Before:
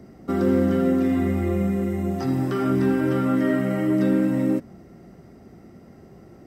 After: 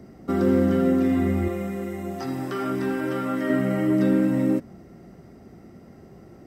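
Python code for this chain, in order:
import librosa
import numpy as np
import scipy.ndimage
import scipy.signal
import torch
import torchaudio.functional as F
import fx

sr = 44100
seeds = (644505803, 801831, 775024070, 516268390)

y = fx.low_shelf(x, sr, hz=280.0, db=-11.5, at=(1.48, 3.5))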